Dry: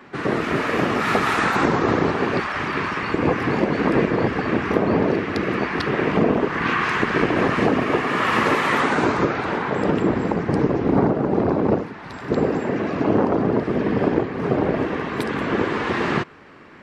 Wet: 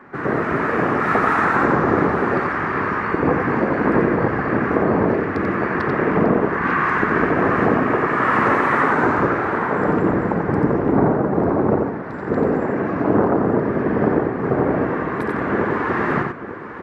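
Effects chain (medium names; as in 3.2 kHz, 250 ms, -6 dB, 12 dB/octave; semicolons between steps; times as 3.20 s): resonant high shelf 2.3 kHz -11.5 dB, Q 1.5; on a send: multi-tap echo 89/896 ms -4.5/-11 dB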